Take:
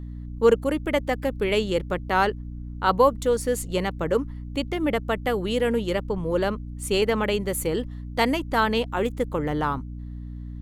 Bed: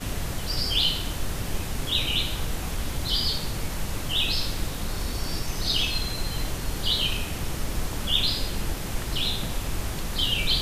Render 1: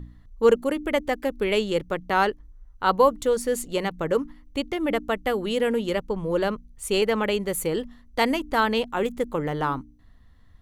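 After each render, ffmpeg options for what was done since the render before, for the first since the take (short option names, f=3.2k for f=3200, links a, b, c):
-af "bandreject=f=60:t=h:w=4,bandreject=f=120:t=h:w=4,bandreject=f=180:t=h:w=4,bandreject=f=240:t=h:w=4,bandreject=f=300:t=h:w=4"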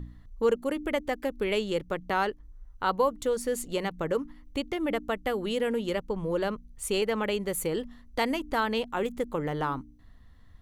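-af "acompressor=threshold=-33dB:ratio=1.5"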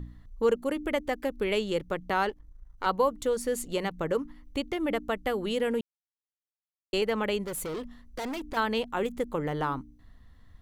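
-filter_complex "[0:a]asettb=1/sr,asplit=3[a][b][c];[a]atrim=end=2.294[d];[b]atrim=start=2.29:end=2.86,asetpts=PTS-STARTPTS,afade=t=in:d=0.004:c=qsin,afade=t=out:st=0.566:d=0.004:c=qsin,aeval=exprs='if(lt(val(0),0),0.447*val(0),val(0))':c=same[e];[c]atrim=start=2.856[f];[d][e]acrossfade=d=0.004:c1=hsin:c2=qsin[g];[g][f]acrossfade=d=0.004:c1=qsin:c2=hsin,asettb=1/sr,asplit=3[h][i][j];[h]atrim=end=7.444[k];[i]atrim=start=7.44:end=8.57,asetpts=PTS-STARTPTS,afade=t=in:d=0.004:c=qsin,afade=t=out:st=1.126:d=0.004:c=qsin,volume=32dB,asoftclip=hard,volume=-32dB[l];[j]atrim=start=8.566[m];[k][l]acrossfade=d=0.004:c1=hsin:c2=qsin[n];[n][m]acrossfade=d=0.004:c1=qsin:c2=hsin,asplit=3[o][p][q];[o]atrim=end=5.81,asetpts=PTS-STARTPTS,afade=t=out:st=5.806:d=0.004:c=hsin[r];[p]atrim=start=5.81:end=6.93,asetpts=PTS-STARTPTS,volume=0[s];[q]atrim=start=6.93,asetpts=PTS-STARTPTS,afade=t=in:d=0.004:c=hsin[t];[r][s][t]concat=n=3:v=0:a=1"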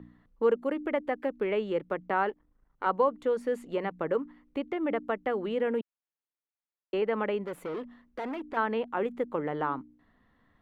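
-filter_complex "[0:a]acrossover=split=170 2900:gain=0.1 1 0.112[a][b][c];[a][b][c]amix=inputs=3:normalize=0,acrossover=split=2600[d][e];[e]acompressor=threshold=-52dB:ratio=4:attack=1:release=60[f];[d][f]amix=inputs=2:normalize=0"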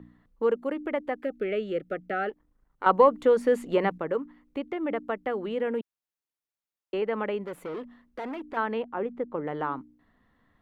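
-filter_complex "[0:a]asplit=3[a][b][c];[a]afade=t=out:st=1.23:d=0.02[d];[b]asuperstop=centerf=980:order=20:qfactor=2.2,afade=t=in:st=1.23:d=0.02,afade=t=out:st=2.29:d=0.02[e];[c]afade=t=in:st=2.29:d=0.02[f];[d][e][f]amix=inputs=3:normalize=0,asettb=1/sr,asplit=3[g][h][i];[g]atrim=end=2.864[j];[h]atrim=start=2.86:end=3.98,asetpts=PTS-STARTPTS,afade=t=in:d=0.004:c=qsin,afade=t=out:st=1.116:d=0.004:c=qsin,acontrast=90[k];[i]atrim=start=3.976[l];[j][k]acrossfade=d=0.004:c1=hsin:c2=qsin[m];[m][l]acrossfade=d=0.004:c1=qsin:c2=hsin,asettb=1/sr,asplit=3[n][o][p];[n]atrim=end=8.824[q];[o]atrim=start=8.82:end=9.47,asetpts=PTS-STARTPTS,afade=t=in:d=0.004:c=qsin,afade=t=out:st=0.646:d=0.004:c=qsin,lowpass=f=1.3k:p=1[r];[p]atrim=start=9.466[s];[q][r]acrossfade=d=0.004:c1=hsin:c2=qsin[t];[t][s]acrossfade=d=0.004:c1=qsin:c2=hsin"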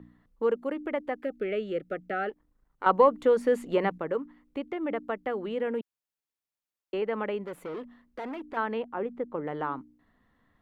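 -af "volume=-1.5dB"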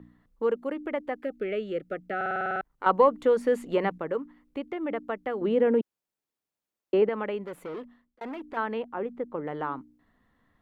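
-filter_complex "[0:a]asettb=1/sr,asplit=3[a][b][c];[a]atrim=end=5.414[d];[b]atrim=start=5.41:end=7.09,asetpts=PTS-STARTPTS,afade=t=in:d=0.004:c=qsin,afade=t=out:st=1.676:d=0.004:c=qsin,equalizer=f=300:w=0.37:g=9[e];[c]atrim=start=7.086[f];[d][e]acrossfade=d=0.004:c1=hsin:c2=qsin[g];[g][f]acrossfade=d=0.004:c1=qsin:c2=hsin,asplit=11[h][i][j][k][l][m][n][o][p][q][r];[h]atrim=end=2.212[s];[i]atrim=start=2.158:end=2.212[t];[j]atrim=start=2.158:end=2.212[u];[k]atrim=start=2.158:end=2.212[v];[l]atrim=start=2.158:end=2.212[w];[m]atrim=start=2.158:end=2.212[x];[n]atrim=start=2.158:end=2.212[y];[o]atrim=start=2.158:end=2.212[z];[p]atrim=start=2.158:end=2.212[aa];[q]atrim=start=2.608:end=8.21,asetpts=PTS-STARTPTS,afade=t=out:st=5.182:d=0.42[ab];[r]atrim=start=8.21,asetpts=PTS-STARTPTS,afade=t=in:d=0.004:c=hsin[ac];[s][t]acrossfade=d=0.004:c1=hsin:c2=hsin[ad];[ad][u]acrossfade=d=0.004:c1=hsin:c2=hsin[ae];[ae][v]acrossfade=d=0.004:c1=hsin:c2=hsin[af];[af][w]acrossfade=d=0.004:c1=hsin:c2=hsin[ag];[ag][x]acrossfade=d=0.004:c1=hsin:c2=hsin[ah];[ah][y]acrossfade=d=0.004:c1=hsin:c2=hsin[ai];[ai][z]acrossfade=d=0.004:c1=hsin:c2=hsin[aj];[aj][aa]acrossfade=d=0.004:c1=hsin:c2=hsin[ak];[ab][ac]concat=n=2:v=0:a=1[al];[ak][al]acrossfade=d=0.004:c1=hsin:c2=hsin"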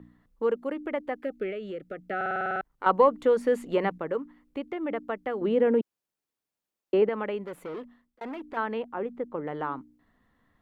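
-filter_complex "[0:a]asettb=1/sr,asplit=3[a][b][c];[a]atrim=end=1.504[d];[b]atrim=start=1.5:end=2.07,asetpts=PTS-STARTPTS,afade=t=in:d=0.004:c=qsin,afade=t=out:st=0.566:d=0.004:c=qsin,acompressor=threshold=-32dB:ratio=5:attack=3.2:release=140:knee=1:detection=peak[e];[c]atrim=start=2.066[f];[d][e]acrossfade=d=0.004:c1=hsin:c2=qsin[g];[g][f]acrossfade=d=0.004:c1=qsin:c2=hsin"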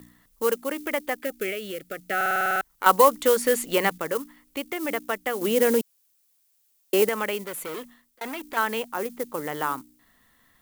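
-af "acrusher=bits=8:mode=log:mix=0:aa=0.000001,crystalizer=i=9.5:c=0"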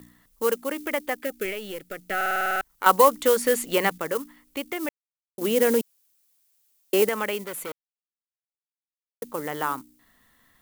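-filter_complex "[0:a]asettb=1/sr,asplit=3[a][b][c];[a]atrim=end=1.454[d];[b]atrim=start=1.45:end=2.69,asetpts=PTS-STARTPTS,afade=t=in:d=0.004:c=qsin,afade=t=out:st=1.236:d=0.004:c=qsin,aeval=exprs='if(lt(val(0),0),0.708*val(0),val(0))':c=same[e];[c]atrim=start=2.686[f];[d][e]acrossfade=d=0.004:c1=hsin:c2=qsin[g];[g][f]acrossfade=d=0.004:c1=qsin:c2=hsin,asplit=5[h][i][j][k][l];[h]atrim=end=4.89,asetpts=PTS-STARTPTS,afade=t=out:st=4.886:d=0.004:c=hsin[m];[i]atrim=start=4.89:end=5.38,asetpts=PTS-STARTPTS,volume=0[n];[j]atrim=start=5.38:end=7.72,asetpts=PTS-STARTPTS,afade=t=in:d=0.004:c=hsin,afade=t=out:st=2.336:d=0.004:c=hsin[o];[k]atrim=start=7.72:end=9.22,asetpts=PTS-STARTPTS,volume=0[p];[l]atrim=start=9.22,asetpts=PTS-STARTPTS,afade=t=in:d=0.004:c=hsin[q];[m][n][o][p][q]concat=n=5:v=0:a=1"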